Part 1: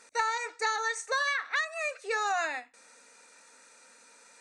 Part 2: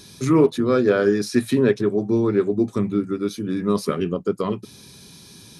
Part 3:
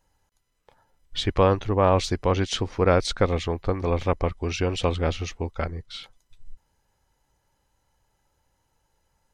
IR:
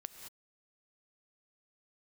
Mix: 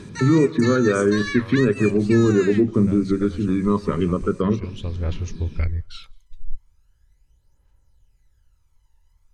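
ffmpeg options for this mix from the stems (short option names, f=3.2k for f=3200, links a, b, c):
-filter_complex "[0:a]highpass=1.4k,volume=2dB[a];[1:a]lowpass=1.9k,volume=2.5dB,asplit=3[b][c][d];[c]volume=-8dB[e];[2:a]asubboost=boost=3.5:cutoff=99,volume=-4dB,asplit=2[f][g];[g]volume=-19dB[h];[d]apad=whole_len=411489[i];[f][i]sidechaincompress=threshold=-32dB:ratio=4:attack=5.9:release=924[j];[b][j]amix=inputs=2:normalize=0,aphaser=in_gain=1:out_gain=1:delay=1.1:decay=0.6:speed=0.39:type=triangular,alimiter=limit=-10.5dB:level=0:latency=1:release=115,volume=0dB[k];[3:a]atrim=start_sample=2205[l];[e][h]amix=inputs=2:normalize=0[m];[m][l]afir=irnorm=-1:irlink=0[n];[a][k][n]amix=inputs=3:normalize=0,equalizer=f=760:t=o:w=0.63:g=-8"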